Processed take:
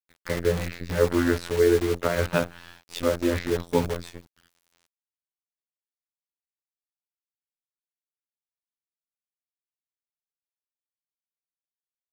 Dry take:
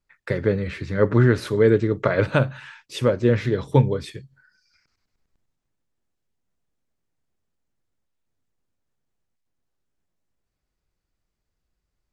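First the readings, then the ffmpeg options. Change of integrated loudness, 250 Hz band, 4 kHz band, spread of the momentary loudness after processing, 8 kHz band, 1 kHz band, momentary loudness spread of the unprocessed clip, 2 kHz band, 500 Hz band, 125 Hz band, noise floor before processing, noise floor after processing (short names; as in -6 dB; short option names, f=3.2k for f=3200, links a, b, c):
-4.0 dB, -3.5 dB, +0.5 dB, 12 LU, +6.5 dB, -2.5 dB, 11 LU, -3.0 dB, -3.0 dB, -10.0 dB, -80 dBFS, under -85 dBFS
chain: -af "afftfilt=real='hypot(re,im)*cos(PI*b)':imag='0':win_size=2048:overlap=0.75,acrusher=bits=6:dc=4:mix=0:aa=0.000001"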